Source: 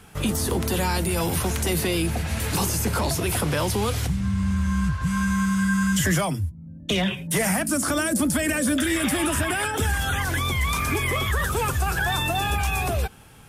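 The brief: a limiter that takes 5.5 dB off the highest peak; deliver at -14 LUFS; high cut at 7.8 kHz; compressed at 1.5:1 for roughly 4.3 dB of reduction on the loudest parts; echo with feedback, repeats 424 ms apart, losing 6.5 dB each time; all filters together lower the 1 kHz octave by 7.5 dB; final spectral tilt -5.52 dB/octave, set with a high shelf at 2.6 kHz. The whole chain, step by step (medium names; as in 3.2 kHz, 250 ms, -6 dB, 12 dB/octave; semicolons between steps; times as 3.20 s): low-pass 7.8 kHz; peaking EQ 1 kHz -9 dB; treble shelf 2.6 kHz -6.5 dB; compression 1.5:1, threshold -32 dBFS; peak limiter -22.5 dBFS; feedback delay 424 ms, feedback 47%, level -6.5 dB; trim +16 dB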